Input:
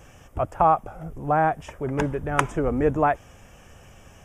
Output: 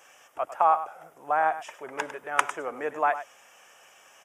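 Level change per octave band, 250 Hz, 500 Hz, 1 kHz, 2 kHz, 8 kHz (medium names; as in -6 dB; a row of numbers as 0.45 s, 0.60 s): -17.5 dB, -7.0 dB, -2.0 dB, 0.0 dB, 0.0 dB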